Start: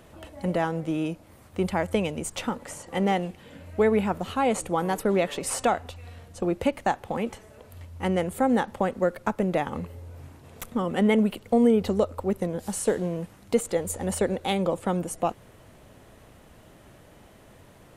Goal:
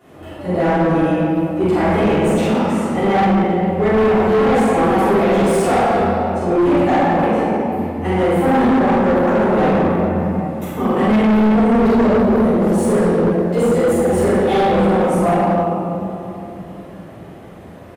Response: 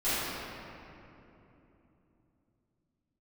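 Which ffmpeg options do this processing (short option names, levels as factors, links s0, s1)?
-filter_complex "[0:a]highpass=90,highshelf=f=9600:g=8,asplit=2[s0][s1];[s1]adelay=46,volume=0.531[s2];[s0][s2]amix=inputs=2:normalize=0[s3];[1:a]atrim=start_sample=2205,asetrate=43659,aresample=44100[s4];[s3][s4]afir=irnorm=-1:irlink=0,asoftclip=type=hard:threshold=0.251,highshelf=f=3300:g=-11.5,volume=1.12"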